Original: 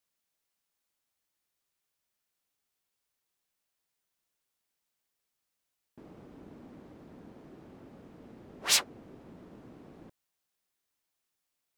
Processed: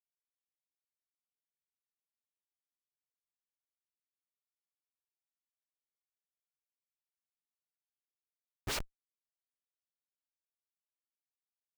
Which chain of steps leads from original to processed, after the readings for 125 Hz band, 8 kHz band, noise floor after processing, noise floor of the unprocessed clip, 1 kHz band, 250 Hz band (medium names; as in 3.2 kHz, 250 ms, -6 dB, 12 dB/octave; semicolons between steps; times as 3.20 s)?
-1.0 dB, -15.5 dB, under -85 dBFS, -84 dBFS, -6.5 dB, -10.5 dB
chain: vibrato 7.9 Hz 36 cents; high-pass sweep 890 Hz -> 100 Hz, 8.49–9.04 s; Schmitt trigger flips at -25.5 dBFS; trim +8.5 dB